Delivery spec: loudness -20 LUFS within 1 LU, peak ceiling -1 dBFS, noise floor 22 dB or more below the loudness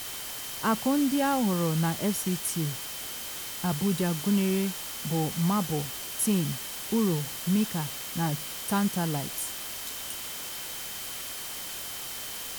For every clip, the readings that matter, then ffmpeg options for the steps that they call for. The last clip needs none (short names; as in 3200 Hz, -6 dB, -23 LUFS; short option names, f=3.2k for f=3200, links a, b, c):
steady tone 3100 Hz; tone level -46 dBFS; noise floor -38 dBFS; noise floor target -51 dBFS; loudness -29.0 LUFS; peak -14.5 dBFS; loudness target -20.0 LUFS
-> -af "bandreject=f=3.1k:w=30"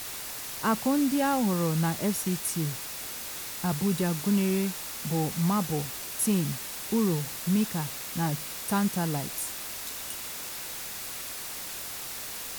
steady tone none; noise floor -38 dBFS; noise floor target -51 dBFS
-> -af "afftdn=nr=13:nf=-38"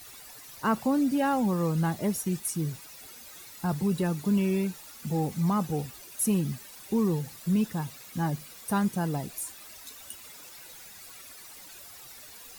noise floor -48 dBFS; noise floor target -51 dBFS
-> -af "afftdn=nr=6:nf=-48"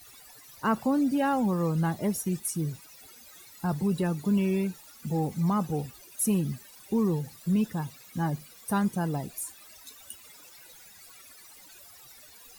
noise floor -52 dBFS; loudness -29.0 LUFS; peak -16.0 dBFS; loudness target -20.0 LUFS
-> -af "volume=9dB"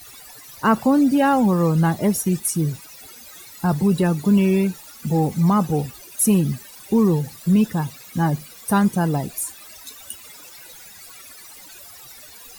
loudness -20.0 LUFS; peak -7.0 dBFS; noise floor -43 dBFS